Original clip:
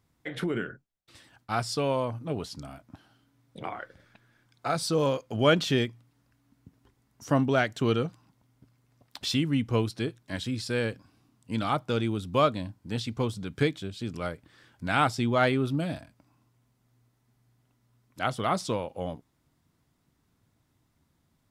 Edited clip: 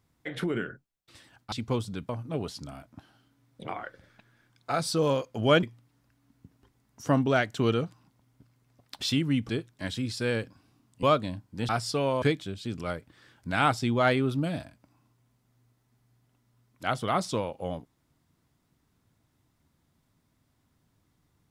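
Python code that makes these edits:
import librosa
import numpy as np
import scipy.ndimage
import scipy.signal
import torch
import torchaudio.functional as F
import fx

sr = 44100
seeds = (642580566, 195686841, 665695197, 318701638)

y = fx.edit(x, sr, fx.swap(start_s=1.52, length_s=0.53, other_s=13.01, other_length_s=0.57),
    fx.cut(start_s=5.59, length_s=0.26),
    fx.cut(start_s=9.71, length_s=0.27),
    fx.cut(start_s=11.52, length_s=0.83), tone=tone)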